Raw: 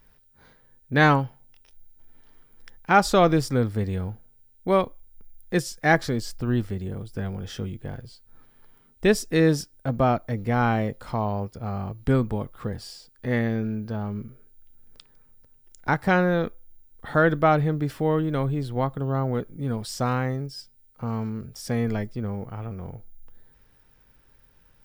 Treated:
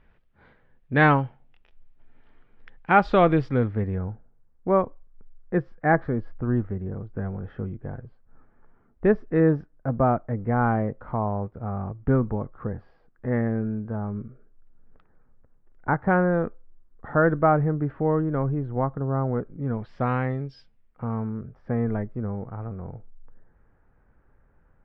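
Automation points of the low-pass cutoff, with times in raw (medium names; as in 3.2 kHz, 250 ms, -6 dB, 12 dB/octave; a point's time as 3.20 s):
low-pass 24 dB/octave
3.56 s 2.9 kHz
4.06 s 1.6 kHz
19.50 s 1.6 kHz
20.53 s 3.6 kHz
21.25 s 1.6 kHz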